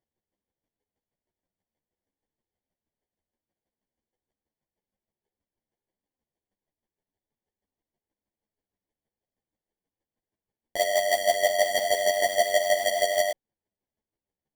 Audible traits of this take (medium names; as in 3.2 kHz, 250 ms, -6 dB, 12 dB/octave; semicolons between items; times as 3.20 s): chopped level 6.3 Hz, depth 60%, duty 20%; aliases and images of a low sample rate 1.3 kHz, jitter 0%; a shimmering, thickened sound